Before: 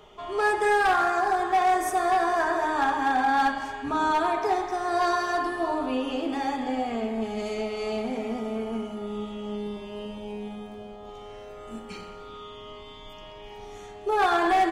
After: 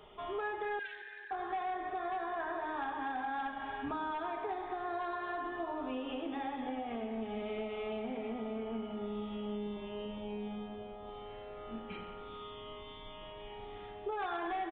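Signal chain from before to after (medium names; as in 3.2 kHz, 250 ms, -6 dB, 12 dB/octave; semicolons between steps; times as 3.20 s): compression, threshold -31 dBFS, peak gain reduction 11.5 dB; 0.79–1.31 s: brick-wall FIR high-pass 1.5 kHz; on a send: feedback delay 230 ms, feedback 59%, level -19 dB; on the sum: resampled via 8 kHz; trim -4.5 dB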